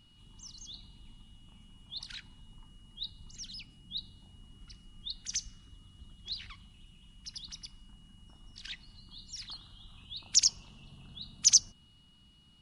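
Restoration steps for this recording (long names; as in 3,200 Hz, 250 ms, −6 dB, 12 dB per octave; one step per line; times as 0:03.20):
notch filter 2,900 Hz, Q 30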